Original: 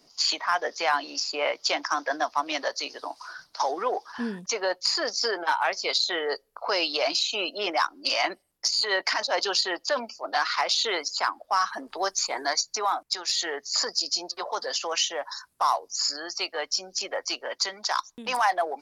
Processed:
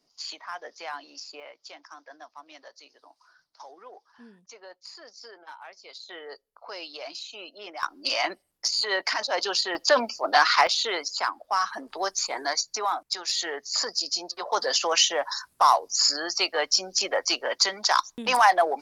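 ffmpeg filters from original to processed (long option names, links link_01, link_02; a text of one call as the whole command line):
ffmpeg -i in.wav -af "asetnsamples=nb_out_samples=441:pad=0,asendcmd='1.4 volume volume -19.5dB;6.09 volume volume -13dB;7.83 volume volume -1dB;9.75 volume volume 6.5dB;10.67 volume volume -1dB;14.52 volume volume 5dB',volume=-12dB" out.wav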